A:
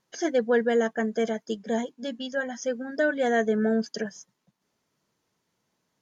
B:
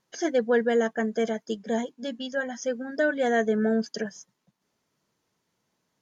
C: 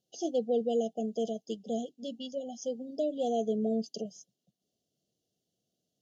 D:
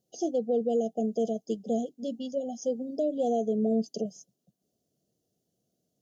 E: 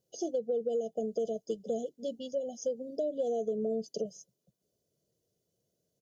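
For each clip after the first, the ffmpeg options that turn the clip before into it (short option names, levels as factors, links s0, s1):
-af anull
-af "afftfilt=real='re*(1-between(b*sr/4096,780,2700))':imag='im*(1-between(b*sr/4096,780,2700))':win_size=4096:overlap=0.75,highpass=42,volume=0.501"
-af "acontrast=55,alimiter=limit=0.119:level=0:latency=1:release=232,equalizer=f=3000:t=o:w=1.9:g=-10.5"
-af "aecho=1:1:2:0.51,acompressor=threshold=0.0447:ratio=4,volume=0.794"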